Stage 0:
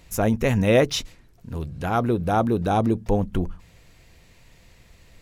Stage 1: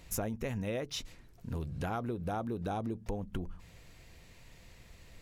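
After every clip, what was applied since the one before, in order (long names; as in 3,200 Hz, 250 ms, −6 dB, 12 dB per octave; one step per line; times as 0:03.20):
downward compressor 16 to 1, threshold −29 dBFS, peak gain reduction 17.5 dB
level −3 dB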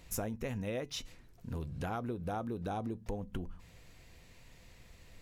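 tuned comb filter 250 Hz, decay 0.24 s, harmonics all, mix 40%
level +2 dB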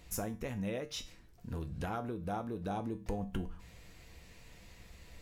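speech leveller 0.5 s
tuned comb filter 65 Hz, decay 0.33 s, harmonics odd, mix 70%
level +8 dB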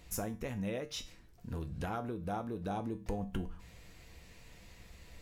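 no processing that can be heard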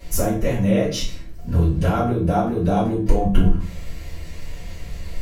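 convolution reverb RT60 0.45 s, pre-delay 3 ms, DRR −12 dB
level +3.5 dB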